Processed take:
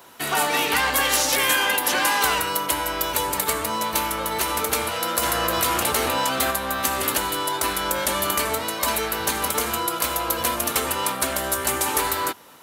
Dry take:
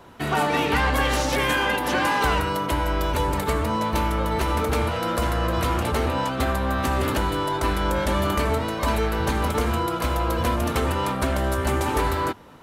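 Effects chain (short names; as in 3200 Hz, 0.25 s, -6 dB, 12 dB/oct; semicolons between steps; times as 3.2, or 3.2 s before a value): RIAA curve recording; 5.23–6.51 fast leveller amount 50%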